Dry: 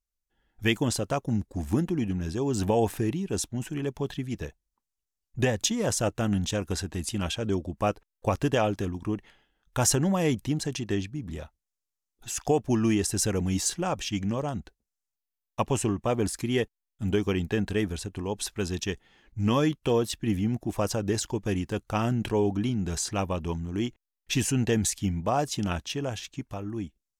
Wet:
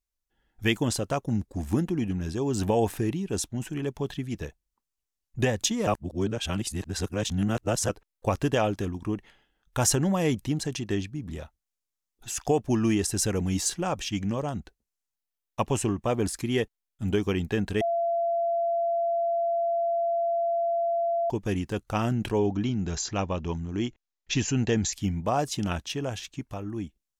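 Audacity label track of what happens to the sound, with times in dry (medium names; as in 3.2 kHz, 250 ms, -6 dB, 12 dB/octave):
5.870000	7.890000	reverse
17.810000	21.300000	bleep 680 Hz -23 dBFS
22.380000	24.930000	brick-wall FIR low-pass 7.6 kHz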